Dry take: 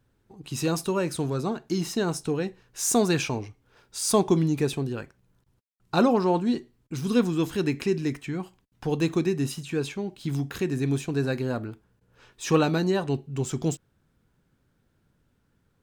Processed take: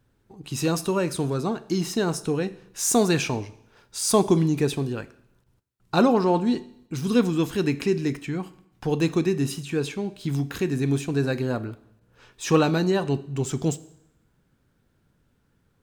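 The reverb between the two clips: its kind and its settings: Schroeder reverb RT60 0.77 s, combs from 28 ms, DRR 16.5 dB; gain +2 dB

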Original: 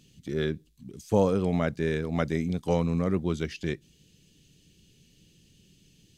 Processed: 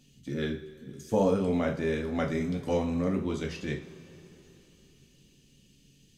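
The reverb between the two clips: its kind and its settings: two-slope reverb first 0.35 s, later 3.6 s, from -21 dB, DRR 0.5 dB; gain -4 dB

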